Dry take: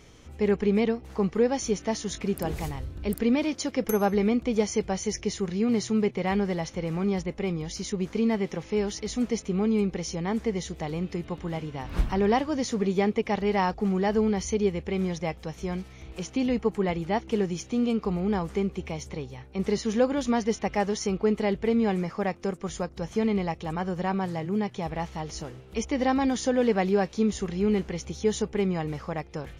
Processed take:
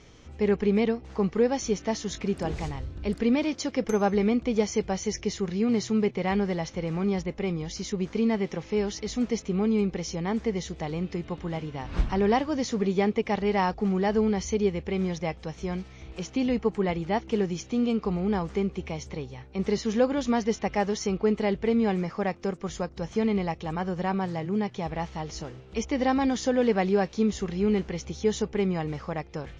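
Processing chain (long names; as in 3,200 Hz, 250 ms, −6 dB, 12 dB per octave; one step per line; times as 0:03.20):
low-pass filter 6,900 Hz 24 dB per octave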